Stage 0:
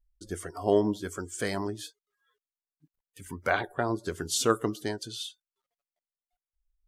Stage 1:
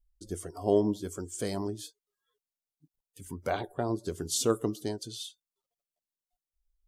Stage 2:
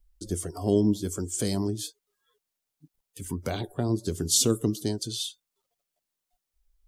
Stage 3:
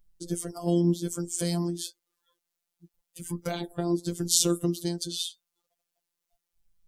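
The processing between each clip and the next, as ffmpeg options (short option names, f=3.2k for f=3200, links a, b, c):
-af "equalizer=f=1.7k:w=0.95:g=-12.5"
-filter_complex "[0:a]acrossover=split=320|3000[a][b][c];[b]acompressor=threshold=-49dB:ratio=2.5[d];[a][d][c]amix=inputs=3:normalize=0,volume=8.5dB"
-af "afftfilt=real='hypot(re,im)*cos(PI*b)':imag='0':win_size=1024:overlap=0.75,volume=3dB"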